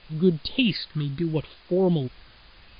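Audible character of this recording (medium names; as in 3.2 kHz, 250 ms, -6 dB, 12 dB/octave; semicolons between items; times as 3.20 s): tremolo saw up 1.3 Hz, depth 50%; phasing stages 6, 0.74 Hz, lowest notch 640–2100 Hz; a quantiser's noise floor 8-bit, dither triangular; MP3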